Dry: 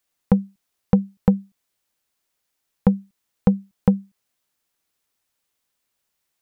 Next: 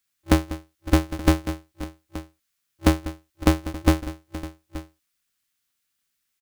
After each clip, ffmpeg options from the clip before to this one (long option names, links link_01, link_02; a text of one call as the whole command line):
ffmpeg -i in.wav -af "aecho=1:1:193|556|876:0.188|0.126|0.15,afftfilt=real='re*(1-between(b*sr/4096,210,1200))':imag='im*(1-between(b*sr/4096,210,1200))':win_size=4096:overlap=0.75,aeval=exprs='val(0)*sgn(sin(2*PI*120*n/s))':channel_layout=same" out.wav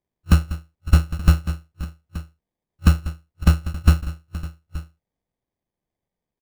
ffmpeg -i in.wav -af "firequalizer=gain_entry='entry(200,0);entry(340,-28);entry(890,-12);entry(6800,-21)':delay=0.05:min_phase=1,acrusher=samples=32:mix=1:aa=0.000001,volume=7.5dB" out.wav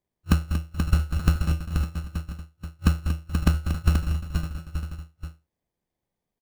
ffmpeg -i in.wav -filter_complex "[0:a]acompressor=threshold=-15dB:ratio=10,asplit=2[link_01][link_02];[link_02]aecho=0:1:234|481:0.299|0.501[link_03];[link_01][link_03]amix=inputs=2:normalize=0" out.wav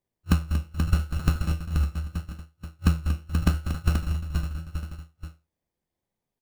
ffmpeg -i in.wav -af "flanger=delay=7.1:depth=7.7:regen=69:speed=0.79:shape=triangular,volume=3dB" out.wav